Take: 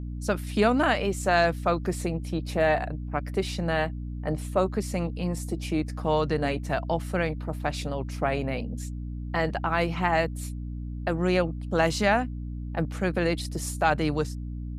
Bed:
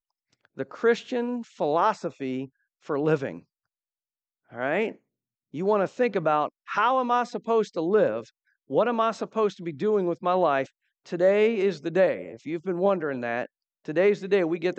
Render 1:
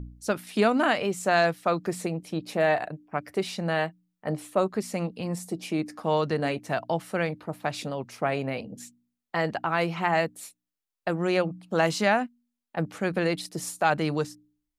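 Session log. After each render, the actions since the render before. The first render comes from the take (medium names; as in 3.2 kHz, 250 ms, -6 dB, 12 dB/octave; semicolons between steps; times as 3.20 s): de-hum 60 Hz, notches 5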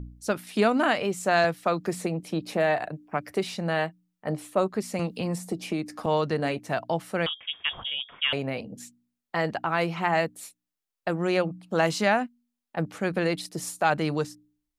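1.44–3.55 s: three bands compressed up and down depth 40%; 4.99–6.06 s: three bands compressed up and down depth 100%; 7.26–8.33 s: frequency inversion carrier 3.5 kHz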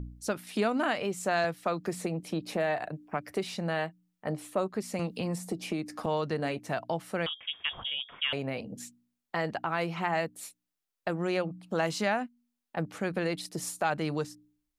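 compression 1.5:1, threshold -35 dBFS, peak gain reduction 6.5 dB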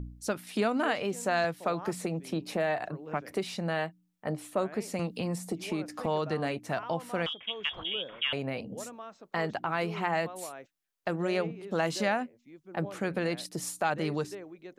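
add bed -20.5 dB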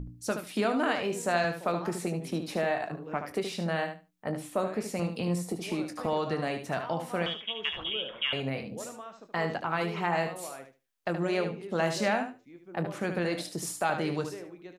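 doubling 23 ms -11.5 dB; feedback delay 74 ms, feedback 16%, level -8 dB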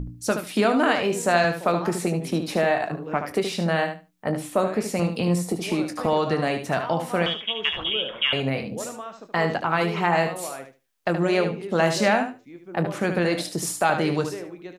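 trim +7.5 dB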